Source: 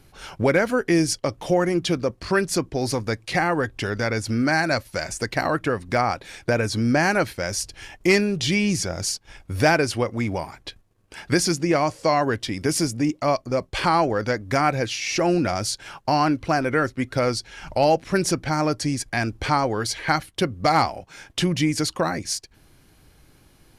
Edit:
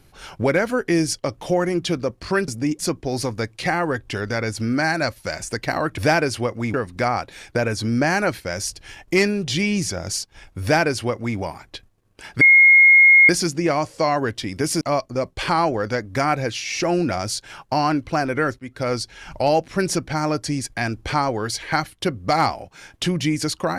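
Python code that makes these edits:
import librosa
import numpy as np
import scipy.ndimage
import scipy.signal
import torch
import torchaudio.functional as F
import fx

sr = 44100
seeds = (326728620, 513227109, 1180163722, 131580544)

y = fx.edit(x, sr, fx.duplicate(start_s=9.55, length_s=0.76, to_s=5.67),
    fx.insert_tone(at_s=11.34, length_s=0.88, hz=2150.0, db=-7.5),
    fx.move(start_s=12.86, length_s=0.31, to_s=2.48),
    fx.fade_in_from(start_s=16.95, length_s=0.36, floor_db=-14.0), tone=tone)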